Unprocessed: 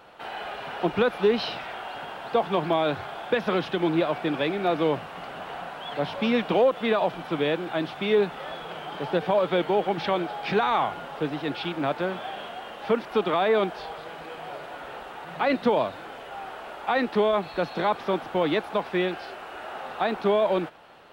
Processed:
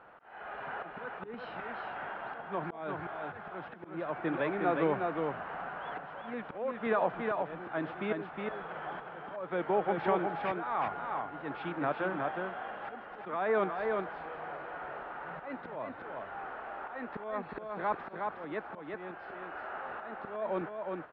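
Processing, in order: auto swell 0.42 s; synth low-pass 1600 Hz, resonance Q 1.7; echo 0.363 s -4 dB; gain -7 dB

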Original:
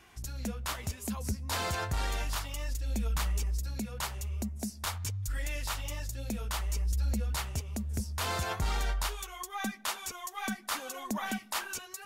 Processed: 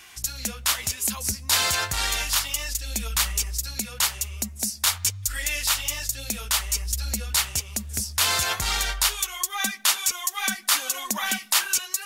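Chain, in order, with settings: tilt shelf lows -9 dB, about 1300 Hz; gain +8 dB

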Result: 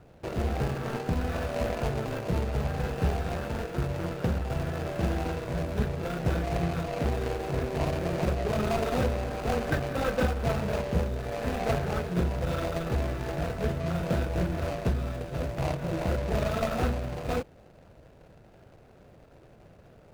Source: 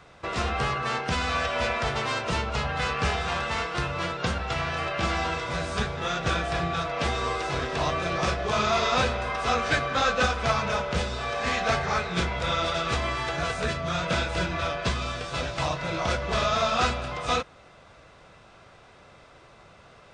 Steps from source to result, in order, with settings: median filter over 41 samples; gain +2.5 dB

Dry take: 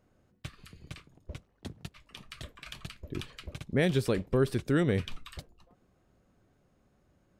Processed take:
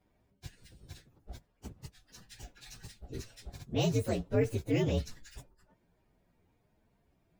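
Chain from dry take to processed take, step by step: inharmonic rescaling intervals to 123%

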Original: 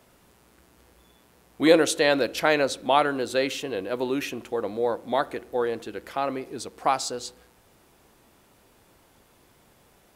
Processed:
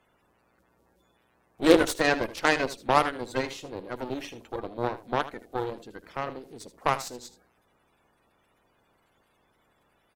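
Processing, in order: bin magnitudes rounded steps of 30 dB; added harmonics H 7 -21 dB, 8 -22 dB, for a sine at -4.5 dBFS; echo 78 ms -14.5 dB

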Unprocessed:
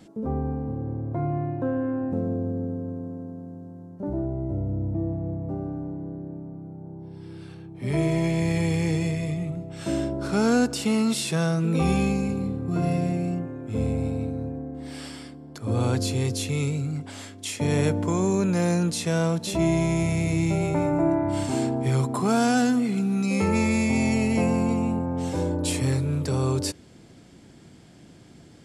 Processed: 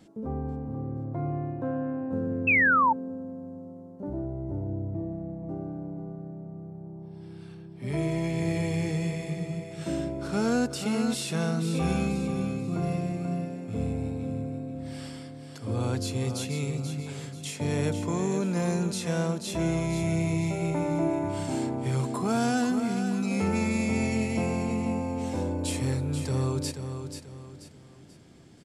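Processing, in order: feedback echo 0.485 s, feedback 36%, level -8 dB; painted sound fall, 2.47–2.93, 850–2700 Hz -16 dBFS; gain -5 dB

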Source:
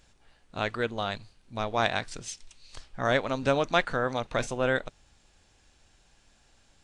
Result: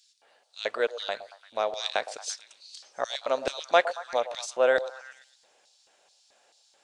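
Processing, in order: LFO high-pass square 2.3 Hz 550–4400 Hz; delay with a stepping band-pass 0.114 s, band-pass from 640 Hz, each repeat 0.7 oct, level -11 dB

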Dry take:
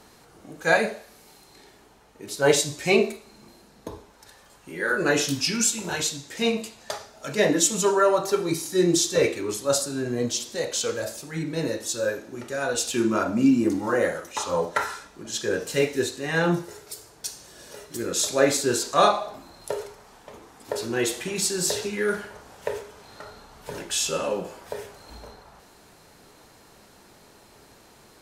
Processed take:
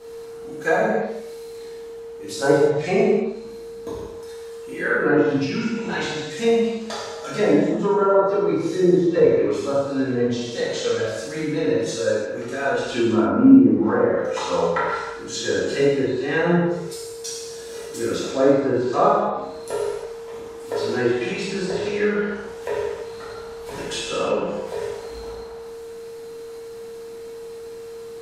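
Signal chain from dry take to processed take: treble ducked by the level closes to 970 Hz, closed at -19 dBFS; whine 460 Hz -44 dBFS; non-linear reverb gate 0.37 s falling, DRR -7.5 dB; gain -3 dB

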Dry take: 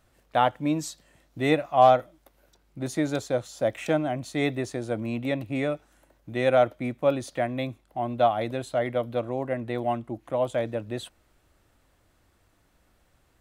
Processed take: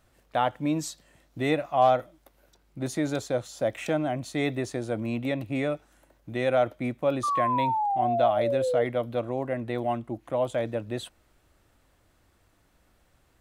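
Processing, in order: in parallel at +0.5 dB: limiter -19.5 dBFS, peak gain reduction 11.5 dB; on the sum: painted sound fall, 7.23–8.85, 460–1200 Hz -20 dBFS; gain -6 dB

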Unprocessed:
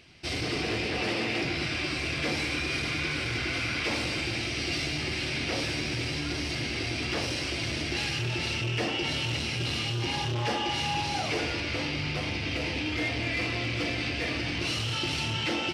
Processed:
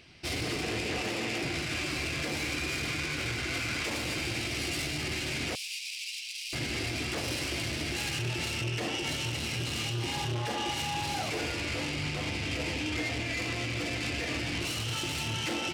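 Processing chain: self-modulated delay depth 0.12 ms; limiter -23 dBFS, peak gain reduction 6 dB; 5.55–6.53 elliptic high-pass 2500 Hz, stop band 60 dB

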